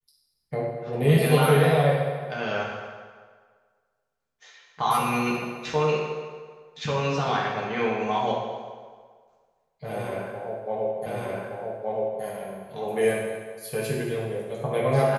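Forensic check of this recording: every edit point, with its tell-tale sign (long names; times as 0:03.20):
0:11.06: the same again, the last 1.17 s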